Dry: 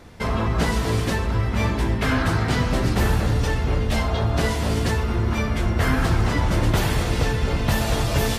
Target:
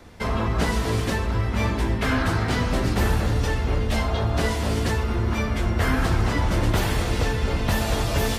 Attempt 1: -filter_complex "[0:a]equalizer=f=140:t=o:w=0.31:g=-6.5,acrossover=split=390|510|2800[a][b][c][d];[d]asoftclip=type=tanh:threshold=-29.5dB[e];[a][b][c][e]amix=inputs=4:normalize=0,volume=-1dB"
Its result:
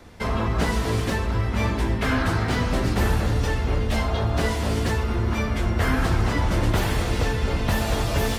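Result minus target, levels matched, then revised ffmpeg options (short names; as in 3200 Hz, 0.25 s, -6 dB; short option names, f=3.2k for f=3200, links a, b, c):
soft clip: distortion +9 dB
-filter_complex "[0:a]equalizer=f=140:t=o:w=0.31:g=-6.5,acrossover=split=390|510|2800[a][b][c][d];[d]asoftclip=type=tanh:threshold=-23dB[e];[a][b][c][e]amix=inputs=4:normalize=0,volume=-1dB"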